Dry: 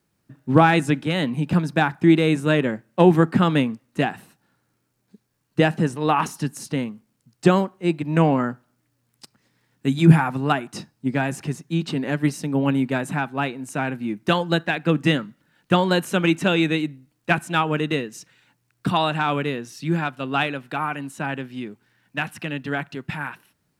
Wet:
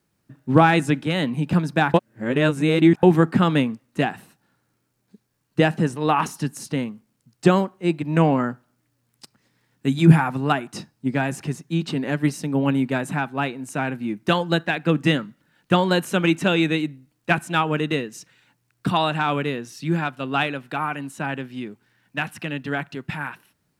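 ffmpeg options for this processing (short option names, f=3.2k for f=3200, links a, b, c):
-filter_complex "[0:a]asplit=3[a][b][c];[a]atrim=end=1.942[d];[b]atrim=start=1.938:end=3.032,asetpts=PTS-STARTPTS,areverse[e];[c]atrim=start=3.028[f];[d][e]acrossfade=d=0.004:c1=hsin:c2=hsin[g];[g][f]acrossfade=d=0.004:c1=hsin:c2=hsin"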